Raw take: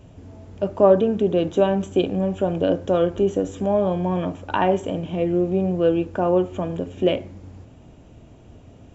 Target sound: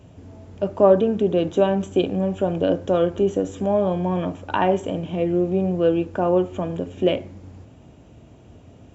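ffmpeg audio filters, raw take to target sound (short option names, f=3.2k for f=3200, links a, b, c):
-af "highpass=56"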